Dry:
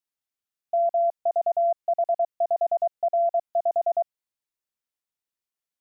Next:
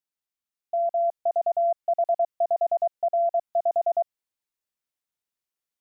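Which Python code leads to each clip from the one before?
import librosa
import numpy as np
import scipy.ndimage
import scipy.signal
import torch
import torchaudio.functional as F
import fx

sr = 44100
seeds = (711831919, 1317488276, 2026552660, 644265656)

y = fx.rider(x, sr, range_db=10, speed_s=0.5)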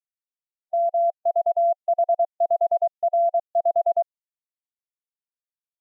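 y = fx.quant_dither(x, sr, seeds[0], bits=12, dither='none')
y = fx.hpss(y, sr, part='harmonic', gain_db=3)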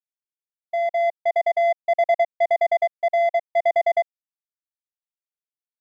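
y = fx.power_curve(x, sr, exponent=2.0)
y = y * librosa.db_to_amplitude(3.0)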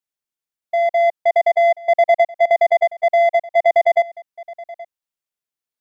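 y = x + 10.0 ** (-20.0 / 20.0) * np.pad(x, (int(825 * sr / 1000.0), 0))[:len(x)]
y = y * librosa.db_to_amplitude(5.5)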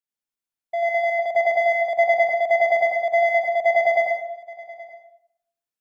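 y = fx.rev_plate(x, sr, seeds[1], rt60_s=0.69, hf_ratio=0.7, predelay_ms=80, drr_db=-3.0)
y = y * librosa.db_to_amplitude(-7.0)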